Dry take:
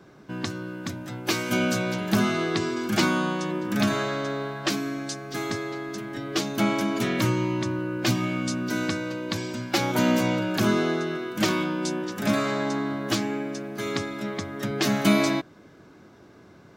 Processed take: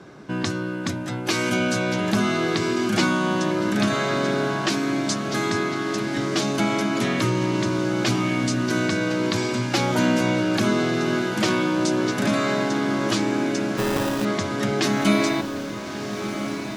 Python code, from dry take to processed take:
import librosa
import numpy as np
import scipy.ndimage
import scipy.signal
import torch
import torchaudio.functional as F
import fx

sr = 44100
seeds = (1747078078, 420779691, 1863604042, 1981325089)

p1 = scipy.signal.sosfilt(scipy.signal.butter(4, 11000.0, 'lowpass', fs=sr, output='sos'), x)
p2 = fx.low_shelf(p1, sr, hz=60.0, db=-7.0)
p3 = fx.over_compress(p2, sr, threshold_db=-31.0, ratio=-1.0)
p4 = p2 + (p3 * librosa.db_to_amplitude(-1.5))
p5 = fx.sample_hold(p4, sr, seeds[0], rate_hz=2200.0, jitter_pct=0, at=(13.77, 14.25))
y = p5 + fx.echo_diffused(p5, sr, ms=1336, feedback_pct=71, wet_db=-9.5, dry=0)